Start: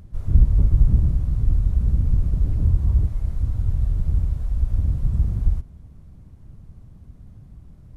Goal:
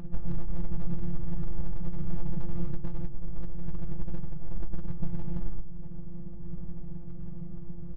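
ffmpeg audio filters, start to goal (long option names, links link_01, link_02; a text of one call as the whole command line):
ffmpeg -i in.wav -filter_complex "[0:a]asettb=1/sr,asplit=3[link_01][link_02][link_03];[link_01]atrim=end=2.714[link_04];[link_02]atrim=start=2.71:end=5.03,asetpts=PTS-STARTPTS,afade=type=in:duration=0.004:curve=qsin,afade=type=out:start_time=2.316:duration=0.004:curve=qsin,agate=range=-7dB:threshold=-18dB:ratio=16:detection=peak[link_05];[link_03]atrim=start=5.026[link_06];[link_04][link_05]acrossfade=duration=0.004:curve1=hsin:curve2=qsin[link_07];[link_07][link_06]acrossfade=duration=0.004:curve1=qsin:curve2=hsin,alimiter=limit=-15.5dB:level=0:latency=1:release=382,acompressor=threshold=-33dB:ratio=3,acrusher=bits=6:mode=log:mix=0:aa=0.000001,afftfilt=real='hypot(re,im)*cos(PI*b)':imag='0':win_size=1024:overlap=0.75,adynamicsmooth=sensitivity=7:basefreq=550,aeval=exprs='val(0)+0.000355*(sin(2*PI*50*n/s)+sin(2*PI*2*50*n/s)/2+sin(2*PI*3*50*n/s)/3+sin(2*PI*4*50*n/s)/4+sin(2*PI*5*50*n/s)/5)':channel_layout=same,asplit=2[link_08][link_09];[link_09]adelay=15,volume=-11dB[link_10];[link_08][link_10]amix=inputs=2:normalize=0,asplit=2[link_11][link_12];[link_12]adelay=101,lowpass=frequency=820:poles=1,volume=-9dB,asplit=2[link_13][link_14];[link_14]adelay=101,lowpass=frequency=820:poles=1,volume=0.42,asplit=2[link_15][link_16];[link_16]adelay=101,lowpass=frequency=820:poles=1,volume=0.42,asplit=2[link_17][link_18];[link_18]adelay=101,lowpass=frequency=820:poles=1,volume=0.42,asplit=2[link_19][link_20];[link_20]adelay=101,lowpass=frequency=820:poles=1,volume=0.42[link_21];[link_11][link_13][link_15][link_17][link_19][link_21]amix=inputs=6:normalize=0,volume=12.5dB" out.wav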